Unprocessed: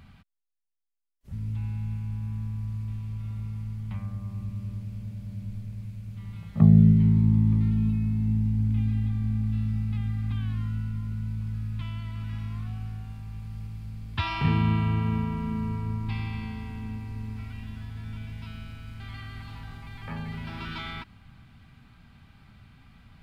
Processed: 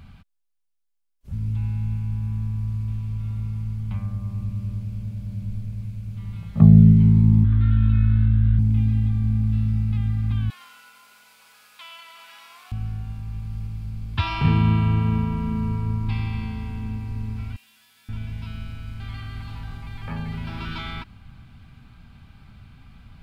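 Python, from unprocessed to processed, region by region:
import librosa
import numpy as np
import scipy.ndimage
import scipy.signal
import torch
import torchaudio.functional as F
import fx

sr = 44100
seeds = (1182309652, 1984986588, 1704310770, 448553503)

y = fx.chain(x, sr, fx.curve_eq(hz=(100.0, 170.0, 240.0, 580.0, 980.0, 1500.0, 2300.0, 3600.0, 6000.0, 9300.0), db=(0, -21, -4, -16, -6, 14, -3, 4, -23, -29)),
    fx.env_flatten(amount_pct=100), at=(7.44, 8.59))
y = fx.chain(y, sr, fx.highpass(hz=570.0, slope=24),
    fx.high_shelf(hz=3600.0, db=8.5),
    fx.echo_single(ms=104, db=-8.5), at=(10.5, 12.72))
y = fx.chain(y, sr, fx.highpass(hz=240.0, slope=12),
    fx.differentiator(),
    fx.leveller(passes=1), at=(17.56, 18.09))
y = fx.low_shelf(y, sr, hz=87.0, db=7.0)
y = fx.notch(y, sr, hz=1900.0, q=12.0)
y = F.gain(torch.from_numpy(y), 3.0).numpy()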